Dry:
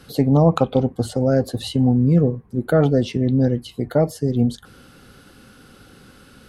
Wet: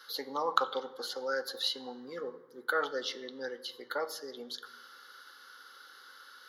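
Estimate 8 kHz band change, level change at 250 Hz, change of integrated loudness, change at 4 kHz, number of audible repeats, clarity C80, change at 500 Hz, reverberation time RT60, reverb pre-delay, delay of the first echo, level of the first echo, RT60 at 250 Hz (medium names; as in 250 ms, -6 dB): -8.0 dB, -29.5 dB, -16.5 dB, -1.0 dB, no echo, 17.0 dB, -16.0 dB, 1.1 s, 3 ms, no echo, no echo, 1.4 s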